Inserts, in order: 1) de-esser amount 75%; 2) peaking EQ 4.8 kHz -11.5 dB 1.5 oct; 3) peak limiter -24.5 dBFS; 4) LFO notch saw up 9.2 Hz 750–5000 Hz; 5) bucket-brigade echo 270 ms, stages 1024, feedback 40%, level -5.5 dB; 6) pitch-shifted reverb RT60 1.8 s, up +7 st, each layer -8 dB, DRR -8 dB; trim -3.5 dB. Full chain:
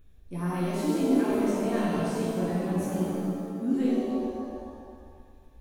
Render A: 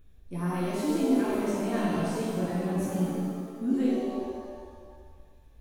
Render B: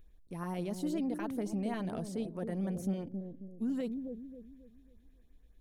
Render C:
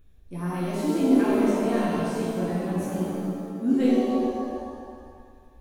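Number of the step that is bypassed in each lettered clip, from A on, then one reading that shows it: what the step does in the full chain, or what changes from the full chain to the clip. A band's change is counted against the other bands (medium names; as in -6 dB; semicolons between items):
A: 5, momentary loudness spread change -1 LU; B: 6, loudness change -9.0 LU; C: 3, 8 kHz band -2.5 dB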